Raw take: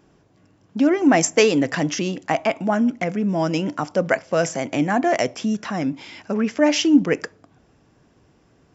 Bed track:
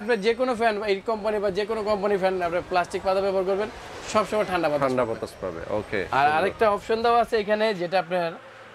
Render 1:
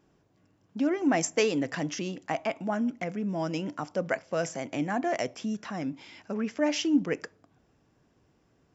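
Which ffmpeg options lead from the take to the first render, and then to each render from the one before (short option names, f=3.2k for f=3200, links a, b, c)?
-af "volume=-9.5dB"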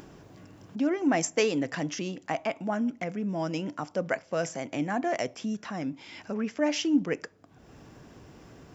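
-af "acompressor=mode=upward:threshold=-35dB:ratio=2.5"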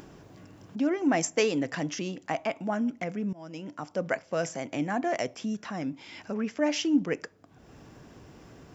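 -filter_complex "[0:a]asplit=2[a][b];[a]atrim=end=3.33,asetpts=PTS-STARTPTS,afade=t=out:st=3.326:d=0.004:c=hsin:silence=0.0891251[c];[b]atrim=start=3.33,asetpts=PTS-STARTPTS,afade=t=in:d=0.72:silence=0.0891251[d];[c][d]concat=n=2:v=0:a=1"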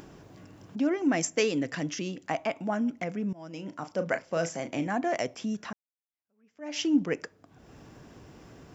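-filter_complex "[0:a]asettb=1/sr,asplit=3[a][b][c];[a]atrim=end=1.024[d];[b]atrim=start=1.02:end=2.29,asetpts=PTS-STARTPTS,afade=t=in:d=0.004:c=qsin,afade=t=out:st=1.266:d=0.004:c=qsin,equalizer=f=830:w=1.5:g=-5.5[e];[c]atrim=start=2.286[f];[d][e]acrossfade=d=0.004:c1=hsin:c2=qsin[g];[g][f]acrossfade=d=0.004:c1=qsin:c2=hsin,asettb=1/sr,asplit=3[h][i][j];[h]atrim=end=3.504[k];[i]atrim=start=3.5:end=4.87,asetpts=PTS-STARTPTS,afade=t=in:d=0.004:c=qsin,afade=t=out:st=1.366:d=0.004:c=qsin,asplit=2[l][m];[m]adelay=36,volume=-10dB[n];[l][n]amix=inputs=2:normalize=0,atrim=end_sample=60417[o];[j]atrim=start=4.866[p];[k][o]acrossfade=d=0.004:c1=hsin:c2=qsin[q];[q][p]acrossfade=d=0.004:c1=qsin:c2=hsin,asplit=2[r][s];[r]atrim=end=5.73,asetpts=PTS-STARTPTS,afade=t=out:st=5.726:d=0.004:c=hsin[t];[s]atrim=start=5.73,asetpts=PTS-STARTPTS,afade=t=in:d=1.07:c=exp[u];[t][u]concat=n=2:v=0:a=1"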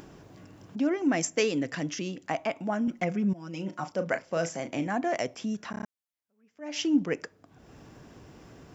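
-filter_complex "[0:a]asettb=1/sr,asplit=3[a][b][c];[a]atrim=end=2.874[d];[b]atrim=start=2.87:end=3.9,asetpts=PTS-STARTPTS,afade=t=in:d=0.004:c=qsin,afade=t=out:st=1.026:d=0.004:c=qsin,aecho=1:1:5.5:0.96,atrim=end_sample=45423[e];[c]atrim=start=3.896[f];[d][e]acrossfade=d=0.004:c1=hsin:c2=qsin[g];[g][f]acrossfade=d=0.004:c1=qsin:c2=hsin,asplit=6[h][i][j][k][l][m];[h]atrim=end=5.742[n];[i]atrim=start=5.708:end=5.742[o];[j]atrim=start=5.708:end=5.742[p];[k]atrim=start=5.708:end=5.742[q];[l]atrim=start=5.708:end=5.742[r];[m]atrim=start=5.858[s];[n][o]acrossfade=d=0.004:c1=hsin:c2=hsin[t];[t][p]acrossfade=d=0.004:c1=hsin:c2=hsin[u];[u][q]acrossfade=d=0.004:c1=hsin:c2=hsin[v];[v][r]acrossfade=d=0.004:c1=hsin:c2=hsin[w];[w][s]acrossfade=d=0.004:c1=hsin:c2=hsin"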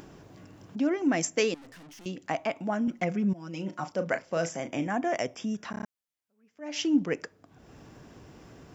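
-filter_complex "[0:a]asettb=1/sr,asplit=3[a][b][c];[a]atrim=end=1.544[d];[b]atrim=start=1.54:end=2.06,asetpts=PTS-STARTPTS,afade=t=in:d=0.004:c=qsin,afade=t=out:st=0.516:d=0.004:c=qsin,aeval=exprs='(tanh(282*val(0)+0.2)-tanh(0.2))/282':c=same[e];[c]atrim=start=2.056[f];[d][e]acrossfade=d=0.004:c1=hsin:c2=qsin[g];[g][f]acrossfade=d=0.004:c1=qsin:c2=hsin,asettb=1/sr,asplit=3[h][i][j];[h]atrim=end=4.514[k];[i]atrim=start=4.51:end=5.63,asetpts=PTS-STARTPTS,afade=t=in:d=0.004:c=qsin,afade=t=out:st=1.116:d=0.004:c=qsin,asuperstop=centerf=4200:order=12:qfactor=5.4[l];[j]atrim=start=5.626[m];[k][l]acrossfade=d=0.004:c1=hsin:c2=qsin[n];[n][m]acrossfade=d=0.004:c1=qsin:c2=hsin"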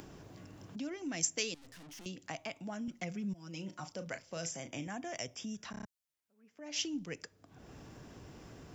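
-filter_complex "[0:a]acrossover=split=120|3000[a][b][c];[b]acompressor=threshold=-53dB:ratio=2[d];[a][d][c]amix=inputs=3:normalize=0"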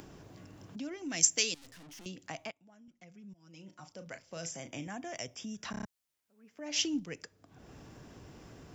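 -filter_complex "[0:a]asettb=1/sr,asplit=3[a][b][c];[a]atrim=end=1.104[d];[b]atrim=start=1.1:end=1.71,asetpts=PTS-STARTPTS,afade=t=in:d=0.004:c=qsin,afade=t=out:st=0.606:d=0.004:c=qsin,highshelf=f=2.2k:g=8.5[e];[c]atrim=start=1.706[f];[d][e]acrossfade=d=0.004:c1=hsin:c2=qsin[g];[g][f]acrossfade=d=0.004:c1=qsin:c2=hsin,asplit=4[h][i][j][k];[h]atrim=end=2.51,asetpts=PTS-STARTPTS,afade=t=out:st=2.506:d=0.004:c=hsin:silence=0.105925[l];[i]atrim=start=2.51:end=5.632,asetpts=PTS-STARTPTS,afade=t=in:d=2.06:c=qua:silence=0.105925[m];[j]atrim=start=5.628:end=7.002,asetpts=PTS-STARTPTS,volume=5dB[n];[k]atrim=start=6.998[o];[l][m]concat=n=2:v=0:a=1[p];[p][n]acrossfade=d=0.004:c1=hsin:c2=hsin[q];[q][o]acrossfade=d=0.004:c1=hsin:c2=hsin"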